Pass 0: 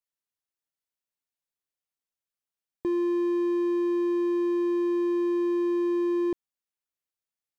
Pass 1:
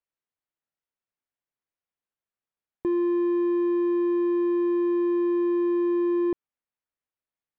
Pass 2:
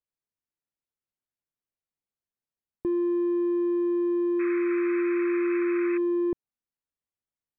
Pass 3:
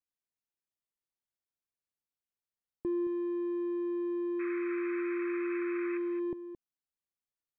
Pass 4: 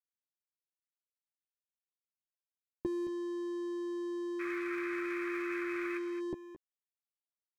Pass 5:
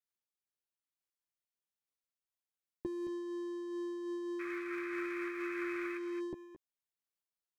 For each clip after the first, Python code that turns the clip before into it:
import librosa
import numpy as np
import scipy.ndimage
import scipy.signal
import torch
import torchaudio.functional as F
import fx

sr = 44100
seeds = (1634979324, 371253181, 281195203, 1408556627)

y1 = scipy.signal.sosfilt(scipy.signal.butter(2, 2300.0, 'lowpass', fs=sr, output='sos'), x)
y1 = y1 * 10.0 ** (2.0 / 20.0)
y2 = fx.low_shelf(y1, sr, hz=440.0, db=9.5)
y2 = fx.spec_paint(y2, sr, seeds[0], shape='noise', start_s=4.39, length_s=1.59, low_hz=1100.0, high_hz=2600.0, level_db=-32.0)
y2 = y2 * 10.0 ** (-7.5 / 20.0)
y3 = y2 + 10.0 ** (-12.0 / 20.0) * np.pad(y2, (int(220 * sr / 1000.0), 0))[:len(y2)]
y3 = y3 * 10.0 ** (-6.0 / 20.0)
y4 = np.sign(y3) * np.maximum(np.abs(y3) - 10.0 ** (-53.0 / 20.0), 0.0)
y4 = fx.doubler(y4, sr, ms=13.0, db=-6)
y4 = y4 * 10.0 ** (2.5 / 20.0)
y5 = fx.am_noise(y4, sr, seeds[1], hz=5.7, depth_pct=55)
y5 = y5 * 10.0 ** (1.0 / 20.0)